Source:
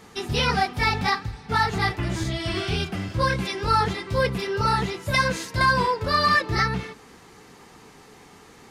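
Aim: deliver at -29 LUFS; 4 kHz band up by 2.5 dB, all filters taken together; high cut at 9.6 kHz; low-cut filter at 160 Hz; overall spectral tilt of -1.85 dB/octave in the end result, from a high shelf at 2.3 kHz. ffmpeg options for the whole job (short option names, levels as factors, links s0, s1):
-af "highpass=160,lowpass=9600,highshelf=f=2300:g=-6,equalizer=f=4000:t=o:g=8.5,volume=0.562"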